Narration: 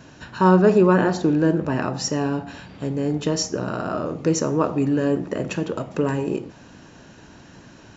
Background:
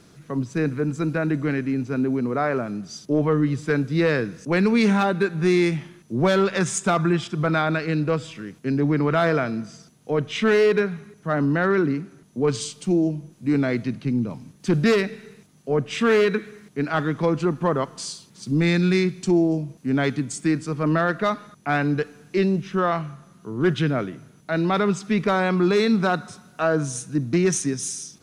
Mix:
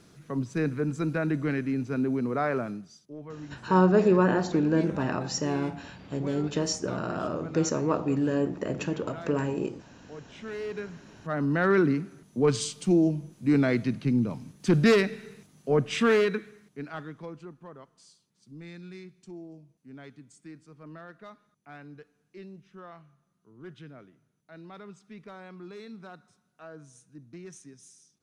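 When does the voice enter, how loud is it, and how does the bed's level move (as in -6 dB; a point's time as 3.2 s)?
3.30 s, -5.5 dB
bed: 2.69 s -4.5 dB
3.06 s -21.5 dB
10.37 s -21.5 dB
11.75 s -1.5 dB
15.95 s -1.5 dB
17.65 s -24.5 dB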